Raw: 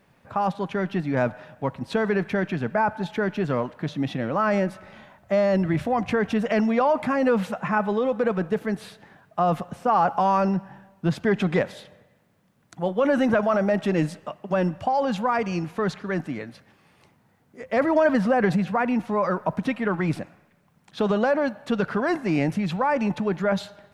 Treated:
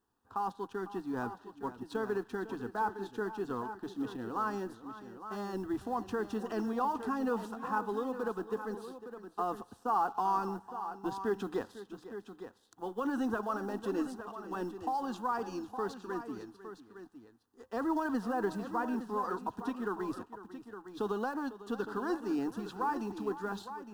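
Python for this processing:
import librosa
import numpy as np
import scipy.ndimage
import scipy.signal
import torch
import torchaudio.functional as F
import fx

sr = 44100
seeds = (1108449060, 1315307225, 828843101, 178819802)

y = fx.law_mismatch(x, sr, coded='A')
y = fx.fixed_phaser(y, sr, hz=590.0, stages=6)
y = fx.echo_multitap(y, sr, ms=(501, 862), db=(-15.0, -11.0))
y = F.gain(torch.from_numpy(y), -7.5).numpy()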